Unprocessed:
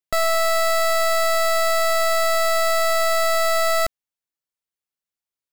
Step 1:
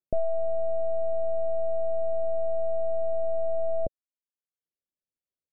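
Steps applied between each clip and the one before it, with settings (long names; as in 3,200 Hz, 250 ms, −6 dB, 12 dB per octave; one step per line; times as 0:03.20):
reverb reduction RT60 0.62 s
elliptic low-pass filter 600 Hz, stop band 60 dB
level +2 dB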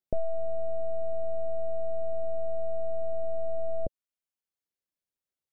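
dynamic equaliser 700 Hz, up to −5 dB, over −40 dBFS, Q 1.7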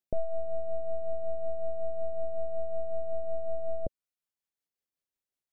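amplitude tremolo 5.4 Hz, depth 40%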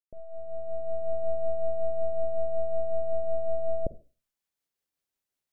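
fade in at the beginning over 1.26 s
on a send at −15.5 dB: convolution reverb RT60 0.35 s, pre-delay 39 ms
on the sum: level +4 dB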